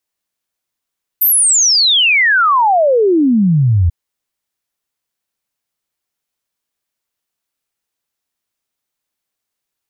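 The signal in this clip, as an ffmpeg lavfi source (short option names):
-f lavfi -i "aevalsrc='0.398*clip(min(t,2.69-t)/0.01,0,1)*sin(2*PI*14000*2.69/log(80/14000)*(exp(log(80/14000)*t/2.69)-1))':d=2.69:s=44100"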